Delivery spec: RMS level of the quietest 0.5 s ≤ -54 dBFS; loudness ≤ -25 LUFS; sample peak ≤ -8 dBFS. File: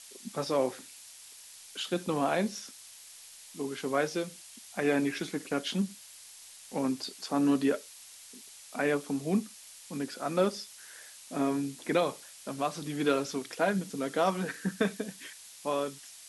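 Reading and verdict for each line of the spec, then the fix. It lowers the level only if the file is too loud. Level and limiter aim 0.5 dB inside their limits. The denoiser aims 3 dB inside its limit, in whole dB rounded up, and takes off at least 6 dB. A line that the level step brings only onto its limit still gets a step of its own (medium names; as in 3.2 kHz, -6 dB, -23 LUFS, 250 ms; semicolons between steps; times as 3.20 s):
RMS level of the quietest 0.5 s -51 dBFS: fail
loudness -32.0 LUFS: pass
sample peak -14.0 dBFS: pass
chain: noise reduction 6 dB, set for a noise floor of -51 dBFS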